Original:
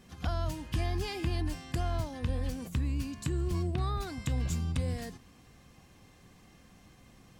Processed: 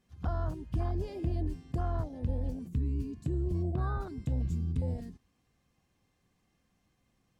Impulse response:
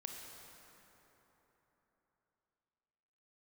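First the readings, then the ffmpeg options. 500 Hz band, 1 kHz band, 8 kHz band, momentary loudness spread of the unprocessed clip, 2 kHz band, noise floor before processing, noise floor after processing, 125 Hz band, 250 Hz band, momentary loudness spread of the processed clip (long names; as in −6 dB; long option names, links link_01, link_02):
−0.5 dB, −2.5 dB, below −15 dB, 3 LU, −9.0 dB, −59 dBFS, −75 dBFS, 0.0 dB, −0.5 dB, 4 LU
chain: -af "afwtdn=0.02"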